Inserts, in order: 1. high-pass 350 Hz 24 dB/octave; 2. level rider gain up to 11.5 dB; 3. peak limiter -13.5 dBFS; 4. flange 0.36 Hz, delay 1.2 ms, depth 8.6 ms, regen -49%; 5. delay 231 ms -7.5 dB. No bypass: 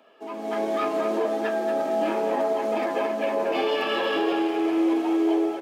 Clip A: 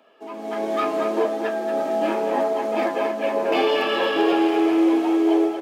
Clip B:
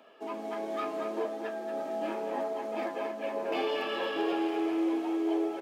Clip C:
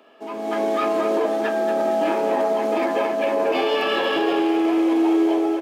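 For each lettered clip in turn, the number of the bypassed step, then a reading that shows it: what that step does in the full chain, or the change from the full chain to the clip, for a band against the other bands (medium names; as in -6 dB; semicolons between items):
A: 3, mean gain reduction 2.5 dB; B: 2, loudness change -8.0 LU; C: 4, loudness change +4.0 LU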